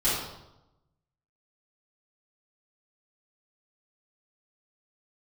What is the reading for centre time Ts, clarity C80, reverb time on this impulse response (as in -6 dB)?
69 ms, 3.5 dB, 0.90 s